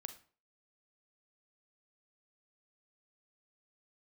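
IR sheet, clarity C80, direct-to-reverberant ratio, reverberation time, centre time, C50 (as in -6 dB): 17.0 dB, 8.5 dB, 0.45 s, 8 ms, 12.0 dB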